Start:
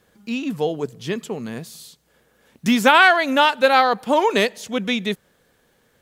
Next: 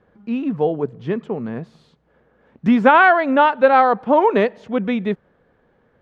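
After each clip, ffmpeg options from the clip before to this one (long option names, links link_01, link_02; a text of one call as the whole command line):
ffmpeg -i in.wav -af "lowpass=1400,volume=3.5dB" out.wav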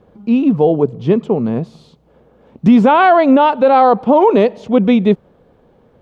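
ffmpeg -i in.wav -af "equalizer=frequency=1700:width_type=o:width=0.85:gain=-12.5,alimiter=level_in=11dB:limit=-1dB:release=50:level=0:latency=1,volume=-1dB" out.wav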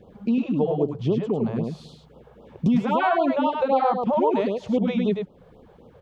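ffmpeg -i in.wav -af "acompressor=threshold=-24dB:ratio=2.5,aecho=1:1:104:0.596,afftfilt=real='re*(1-between(b*sr/1024,240*pow(2000/240,0.5+0.5*sin(2*PI*3.8*pts/sr))/1.41,240*pow(2000/240,0.5+0.5*sin(2*PI*3.8*pts/sr))*1.41))':imag='im*(1-between(b*sr/1024,240*pow(2000/240,0.5+0.5*sin(2*PI*3.8*pts/sr))/1.41,240*pow(2000/240,0.5+0.5*sin(2*PI*3.8*pts/sr))*1.41))':win_size=1024:overlap=0.75" out.wav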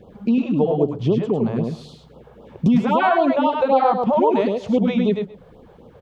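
ffmpeg -i in.wav -filter_complex "[0:a]asplit=2[link_01][link_02];[link_02]adelay=128.3,volume=-17dB,highshelf=frequency=4000:gain=-2.89[link_03];[link_01][link_03]amix=inputs=2:normalize=0,volume=4dB" out.wav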